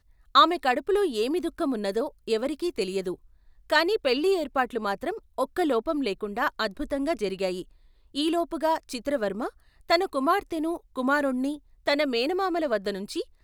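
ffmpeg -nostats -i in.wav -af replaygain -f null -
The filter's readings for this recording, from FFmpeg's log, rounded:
track_gain = +7.0 dB
track_peak = 0.392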